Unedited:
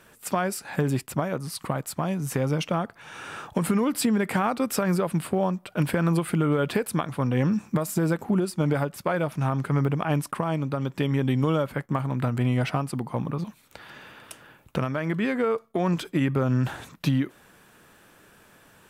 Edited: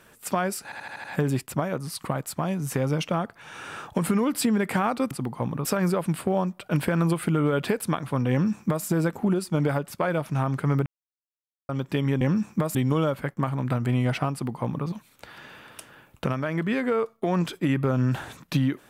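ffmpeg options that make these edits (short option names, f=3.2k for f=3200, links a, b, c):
-filter_complex "[0:a]asplit=12[a][b][c][d][e][f][g][h][i][j][k][l];[a]atrim=end=0.722[m];[b]atrim=start=0.638:end=0.722[n];[c]atrim=start=0.638:end=0.722[o];[d]atrim=start=0.638:end=0.722[p];[e]atrim=start=0.638:end=0.722[q];[f]atrim=start=0.638:end=4.712[r];[g]atrim=start=12.848:end=13.392[s];[h]atrim=start=4.708:end=9.92,asetpts=PTS-STARTPTS,afade=t=out:st=5.208:d=0.004:c=hsin[t];[i]atrim=start=9.92:end=10.75,asetpts=PTS-STARTPTS,volume=0[u];[j]atrim=start=10.75:end=11.272,asetpts=PTS-STARTPTS,afade=t=in:d=0.004:c=hsin[v];[k]atrim=start=7.368:end=7.912[w];[l]atrim=start=11.268[x];[m][n]acrossfade=d=0.004:c1=hsin:c2=hsin[y];[y][o]acrossfade=d=0.004:c1=hsin:c2=hsin[z];[z][p]acrossfade=d=0.004:c1=hsin:c2=hsin[aa];[aa][q]acrossfade=d=0.004:c1=hsin:c2=hsin[ab];[ab][r]acrossfade=d=0.004:c1=hsin:c2=hsin[ac];[ac][s]acrossfade=d=0.004:c1=hsin:c2=hsin[ad];[t][u][v]concat=n=3:v=0:a=1[ae];[ad][ae]acrossfade=d=0.004:c1=hsin:c2=hsin[af];[af][w]acrossfade=d=0.004:c1=hsin:c2=hsin[ag];[ag][x]acrossfade=d=0.004:c1=hsin:c2=hsin"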